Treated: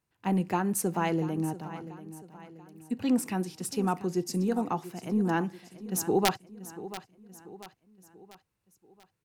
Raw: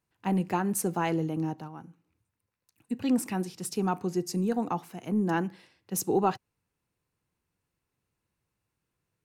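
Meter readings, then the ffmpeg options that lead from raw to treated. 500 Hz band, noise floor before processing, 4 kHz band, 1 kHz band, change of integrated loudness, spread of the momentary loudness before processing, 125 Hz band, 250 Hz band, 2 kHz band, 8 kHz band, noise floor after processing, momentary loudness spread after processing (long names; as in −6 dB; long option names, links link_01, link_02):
0.0 dB, −84 dBFS, +4.5 dB, 0.0 dB, −0.5 dB, 9 LU, 0.0 dB, 0.0 dB, +1.5 dB, +0.5 dB, −80 dBFS, 19 LU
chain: -af "aeval=exprs='(mod(4.73*val(0)+1,2)-1)/4.73':channel_layout=same,aecho=1:1:687|1374|2061|2748:0.178|0.0836|0.0393|0.0185"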